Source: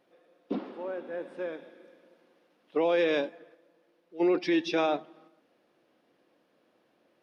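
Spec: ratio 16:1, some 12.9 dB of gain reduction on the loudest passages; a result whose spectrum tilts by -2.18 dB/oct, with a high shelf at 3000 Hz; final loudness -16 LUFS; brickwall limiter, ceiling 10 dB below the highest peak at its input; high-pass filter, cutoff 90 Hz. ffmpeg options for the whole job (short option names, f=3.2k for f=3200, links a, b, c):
-af "highpass=90,highshelf=f=3k:g=9,acompressor=threshold=-34dB:ratio=16,volume=28.5dB,alimiter=limit=-6dB:level=0:latency=1"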